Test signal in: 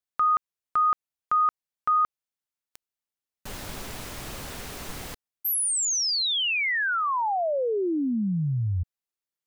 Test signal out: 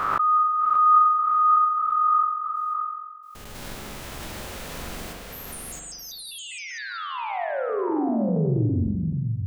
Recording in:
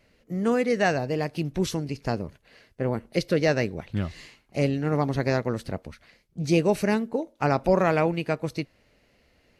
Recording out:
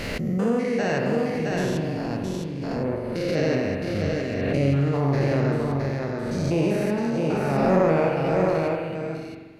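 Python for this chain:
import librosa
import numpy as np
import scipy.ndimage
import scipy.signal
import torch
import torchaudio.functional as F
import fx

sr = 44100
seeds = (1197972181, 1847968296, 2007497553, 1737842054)

y = fx.spec_steps(x, sr, hold_ms=200)
y = y + 10.0 ** (-3.5 / 20.0) * np.pad(y, (int(665 * sr / 1000.0), 0))[:len(y)]
y = fx.rev_spring(y, sr, rt60_s=1.3, pass_ms=(43,), chirp_ms=35, drr_db=1.5)
y = fx.pre_swell(y, sr, db_per_s=23.0)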